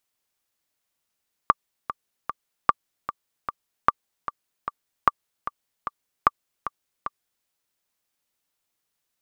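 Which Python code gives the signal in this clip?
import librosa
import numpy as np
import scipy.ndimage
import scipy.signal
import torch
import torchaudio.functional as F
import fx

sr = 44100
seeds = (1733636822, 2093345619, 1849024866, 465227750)

y = fx.click_track(sr, bpm=151, beats=3, bars=5, hz=1170.0, accent_db=12.5, level_db=-2.0)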